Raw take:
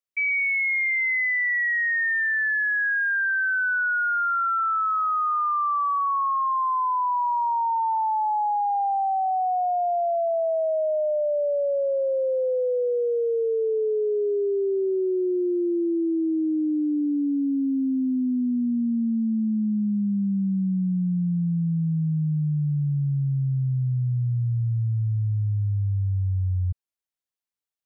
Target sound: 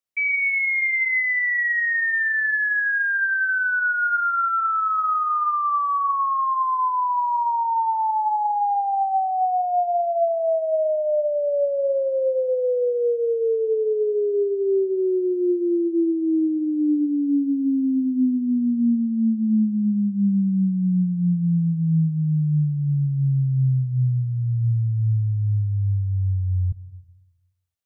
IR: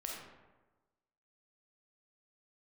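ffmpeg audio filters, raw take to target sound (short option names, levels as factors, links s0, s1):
-filter_complex "[0:a]asplit=2[s0][s1];[s1]equalizer=f=180:w=0.61:g=6[s2];[1:a]atrim=start_sample=2205,asetrate=48510,aresample=44100[s3];[s2][s3]afir=irnorm=-1:irlink=0,volume=0.376[s4];[s0][s4]amix=inputs=2:normalize=0"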